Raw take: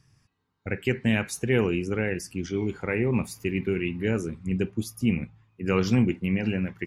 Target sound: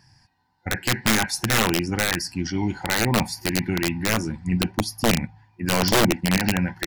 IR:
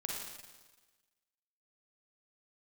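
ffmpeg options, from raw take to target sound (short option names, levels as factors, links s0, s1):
-af "superequalizer=7b=0.355:9b=3.55:10b=0.562:11b=2:14b=2.51,aeval=exprs='(mod(6.68*val(0)+1,2)-1)/6.68':c=same,asetrate=42845,aresample=44100,atempo=1.0293,volume=1.68"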